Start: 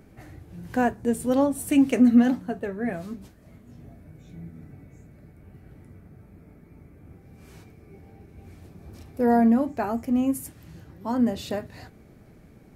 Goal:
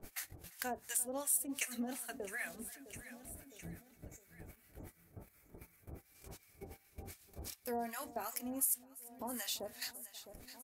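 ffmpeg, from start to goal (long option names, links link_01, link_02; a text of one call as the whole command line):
ffmpeg -i in.wav -filter_complex "[0:a]equalizer=frequency=150:width=0.36:gain=-15,atempo=1.2,acompressor=mode=upward:threshold=-37dB:ratio=2.5,acrossover=split=810[link_01][link_02];[link_01]aeval=exprs='val(0)*(1-1/2+1/2*cos(2*PI*2.7*n/s))':channel_layout=same[link_03];[link_02]aeval=exprs='val(0)*(1-1/2-1/2*cos(2*PI*2.7*n/s))':channel_layout=same[link_04];[link_03][link_04]amix=inputs=2:normalize=0,agate=range=-29dB:threshold=-49dB:ratio=16:detection=peak,crystalizer=i=8:c=0,asplit=2[link_05][link_06];[link_06]aecho=0:1:659|1318|1977:0.0708|0.0333|0.0156[link_07];[link_05][link_07]amix=inputs=2:normalize=0,acompressor=threshold=-59dB:ratio=2,asplit=2[link_08][link_09];[link_09]aecho=0:1:342:0.1[link_10];[link_08][link_10]amix=inputs=2:normalize=0,volume=7.5dB" out.wav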